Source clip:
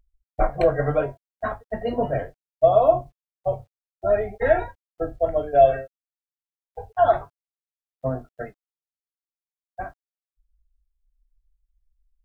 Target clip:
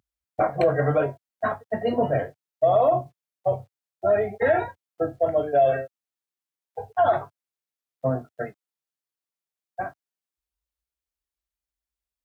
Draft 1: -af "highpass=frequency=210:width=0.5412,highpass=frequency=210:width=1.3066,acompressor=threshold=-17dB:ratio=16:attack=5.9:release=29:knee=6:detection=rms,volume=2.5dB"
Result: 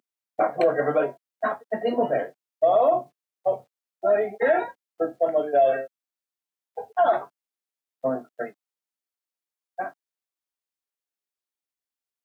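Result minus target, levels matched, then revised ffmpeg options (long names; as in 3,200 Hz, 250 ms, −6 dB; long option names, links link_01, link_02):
125 Hz band −14.0 dB
-af "highpass=frequency=98:width=0.5412,highpass=frequency=98:width=1.3066,acompressor=threshold=-17dB:ratio=16:attack=5.9:release=29:knee=6:detection=rms,volume=2.5dB"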